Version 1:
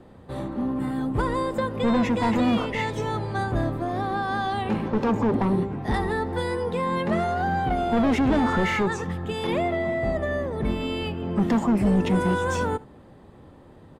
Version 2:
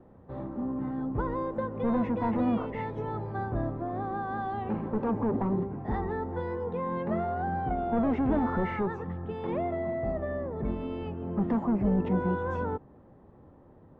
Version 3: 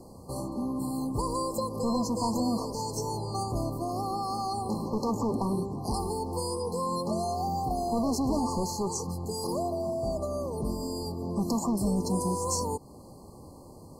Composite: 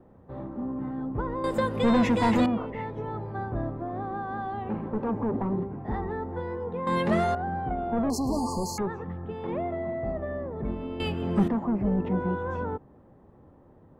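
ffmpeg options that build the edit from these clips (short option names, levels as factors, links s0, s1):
-filter_complex "[0:a]asplit=3[s0][s1][s2];[1:a]asplit=5[s3][s4][s5][s6][s7];[s3]atrim=end=1.442[s8];[s0]atrim=start=1.438:end=2.462[s9];[s4]atrim=start=2.458:end=6.872[s10];[s1]atrim=start=6.868:end=7.352[s11];[s5]atrim=start=7.348:end=8.102[s12];[2:a]atrim=start=8.098:end=8.782[s13];[s6]atrim=start=8.778:end=11.002[s14];[s2]atrim=start=10.998:end=11.482[s15];[s7]atrim=start=11.478[s16];[s8][s9]acrossfade=d=0.004:c1=hsin:c2=hsin[s17];[s17][s10]acrossfade=d=0.004:c1=hsin:c2=hsin[s18];[s18][s11]acrossfade=d=0.004:c1=hsin:c2=hsin[s19];[s19][s12]acrossfade=d=0.004:c1=hsin:c2=hsin[s20];[s20][s13]acrossfade=d=0.004:c1=hsin:c2=hsin[s21];[s21][s14]acrossfade=d=0.004:c1=hsin:c2=hsin[s22];[s22][s15]acrossfade=d=0.004:c1=hsin:c2=hsin[s23];[s23][s16]acrossfade=d=0.004:c1=hsin:c2=hsin"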